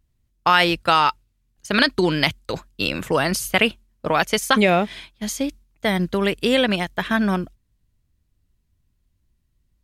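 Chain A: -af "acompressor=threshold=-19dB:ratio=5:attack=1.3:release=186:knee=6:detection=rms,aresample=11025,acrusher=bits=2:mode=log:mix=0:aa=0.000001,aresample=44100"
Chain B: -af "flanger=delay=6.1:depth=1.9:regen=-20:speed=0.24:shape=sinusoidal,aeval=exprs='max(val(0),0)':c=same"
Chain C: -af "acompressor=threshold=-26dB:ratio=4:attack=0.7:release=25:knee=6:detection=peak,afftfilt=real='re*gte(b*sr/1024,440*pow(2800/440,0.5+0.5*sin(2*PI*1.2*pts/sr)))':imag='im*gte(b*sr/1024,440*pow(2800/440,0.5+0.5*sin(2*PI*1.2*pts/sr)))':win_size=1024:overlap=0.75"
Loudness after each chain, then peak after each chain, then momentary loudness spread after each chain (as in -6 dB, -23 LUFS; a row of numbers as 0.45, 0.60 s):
-27.5, -28.5, -34.0 LUFS; -9.0, -4.5, -15.0 dBFS; 8, 12, 11 LU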